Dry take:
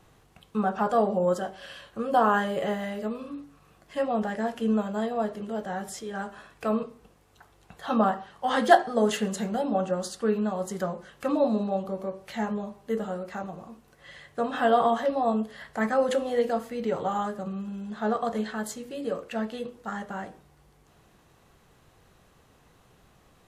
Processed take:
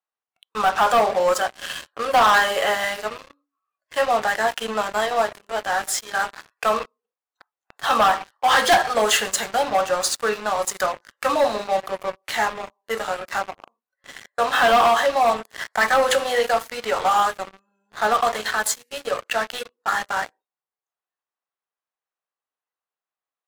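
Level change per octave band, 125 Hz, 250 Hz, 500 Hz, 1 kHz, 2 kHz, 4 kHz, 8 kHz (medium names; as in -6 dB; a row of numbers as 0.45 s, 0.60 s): -7.0 dB, -7.5 dB, +4.5 dB, +8.5 dB, +12.5 dB, +15.0 dB, +15.5 dB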